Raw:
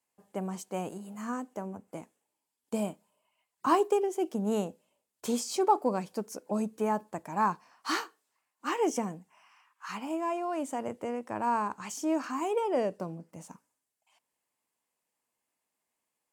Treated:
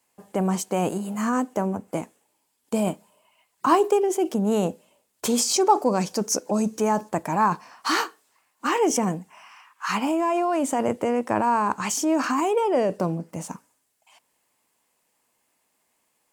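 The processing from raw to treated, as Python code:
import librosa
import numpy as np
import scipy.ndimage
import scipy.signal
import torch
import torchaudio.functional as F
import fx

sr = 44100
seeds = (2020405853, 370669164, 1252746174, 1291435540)

p1 = fx.peak_eq(x, sr, hz=6000.0, db=10.0, octaves=0.64, at=(5.53, 7.09))
p2 = fx.over_compress(p1, sr, threshold_db=-35.0, ratio=-0.5)
p3 = p1 + (p2 * librosa.db_to_amplitude(-2.5))
y = p3 * librosa.db_to_amplitude(6.0)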